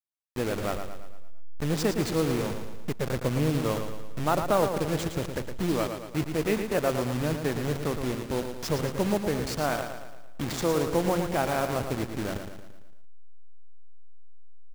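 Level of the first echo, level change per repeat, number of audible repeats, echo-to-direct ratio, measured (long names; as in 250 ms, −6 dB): −7.5 dB, −6.0 dB, 5, −6.0 dB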